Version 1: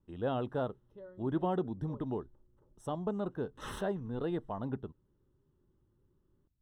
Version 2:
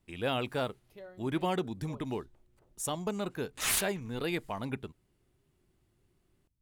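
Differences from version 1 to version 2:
background: remove Butterworth band-reject 700 Hz, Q 3.7
master: remove moving average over 19 samples

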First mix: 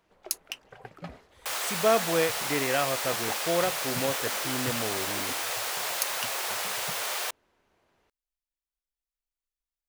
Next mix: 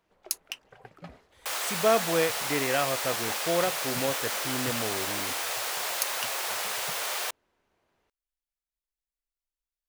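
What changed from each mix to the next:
first sound −4.0 dB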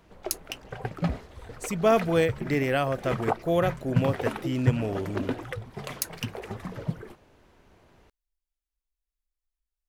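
first sound +12.0 dB
second sound: muted
master: add low-shelf EQ 260 Hz +11.5 dB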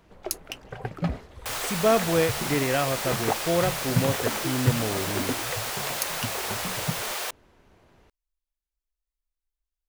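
second sound: unmuted

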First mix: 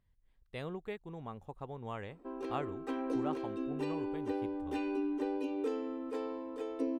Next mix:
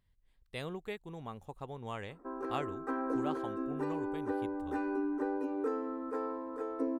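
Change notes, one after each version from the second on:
background: add high shelf with overshoot 2,100 Hz −13.5 dB, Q 3
master: add high-shelf EQ 3,400 Hz +10.5 dB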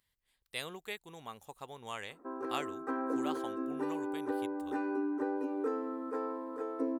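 speech: add spectral tilt +3.5 dB per octave

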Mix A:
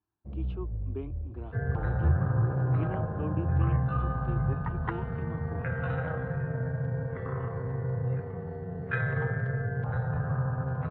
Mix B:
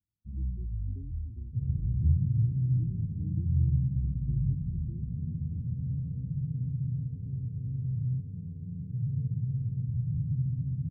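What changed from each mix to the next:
master: add inverse Chebyshev band-stop filter 690–6,300 Hz, stop band 60 dB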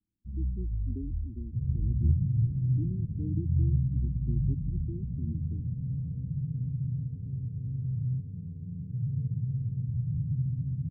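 speech +11.5 dB
first sound: remove high-pass filter 55 Hz

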